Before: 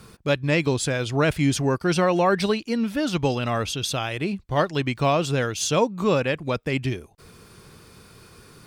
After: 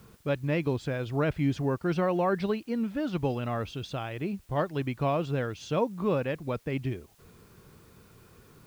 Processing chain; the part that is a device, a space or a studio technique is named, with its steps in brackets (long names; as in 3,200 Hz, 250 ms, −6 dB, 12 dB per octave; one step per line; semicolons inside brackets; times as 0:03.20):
cassette deck with a dirty head (head-to-tape spacing loss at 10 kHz 27 dB; tape wow and flutter 20 cents; white noise bed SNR 34 dB)
level −5 dB